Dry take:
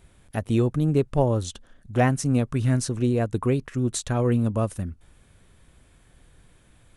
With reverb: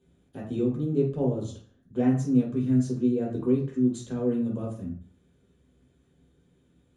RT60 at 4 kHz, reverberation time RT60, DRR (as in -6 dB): 0.40 s, 0.50 s, -4.0 dB